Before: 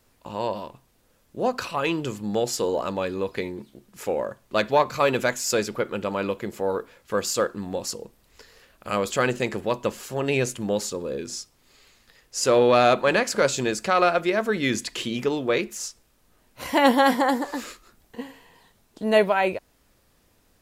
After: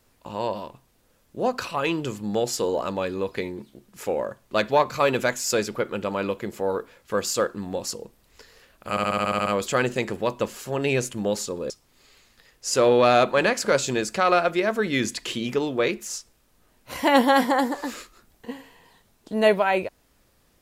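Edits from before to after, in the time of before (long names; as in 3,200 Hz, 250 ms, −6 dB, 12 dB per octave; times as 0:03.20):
0:08.90: stutter 0.07 s, 9 plays
0:11.14–0:11.40: remove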